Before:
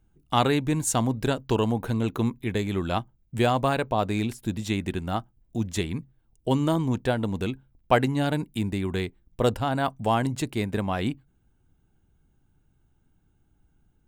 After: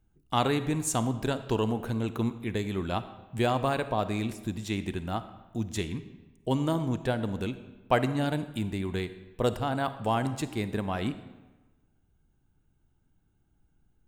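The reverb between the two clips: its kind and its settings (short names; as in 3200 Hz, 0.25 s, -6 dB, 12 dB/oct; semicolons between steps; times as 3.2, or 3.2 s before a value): digital reverb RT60 1.2 s, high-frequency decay 0.75×, pre-delay 10 ms, DRR 12 dB; gain -4 dB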